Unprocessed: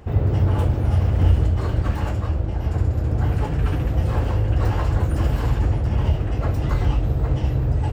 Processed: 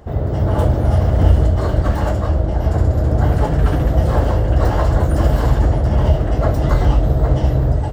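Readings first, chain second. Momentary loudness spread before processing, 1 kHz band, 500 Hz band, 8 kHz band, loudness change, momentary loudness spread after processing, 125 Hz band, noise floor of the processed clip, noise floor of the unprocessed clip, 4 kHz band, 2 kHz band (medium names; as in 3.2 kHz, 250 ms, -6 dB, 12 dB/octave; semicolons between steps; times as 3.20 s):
4 LU, +8.0 dB, +9.5 dB, no reading, +5.0 dB, 3 LU, +4.0 dB, -20 dBFS, -25 dBFS, +4.0 dB, +5.0 dB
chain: graphic EQ with 31 bands 100 Hz -7 dB, 630 Hz +8 dB, 2.5 kHz -10 dB; level rider gain up to 6 dB; trim +1.5 dB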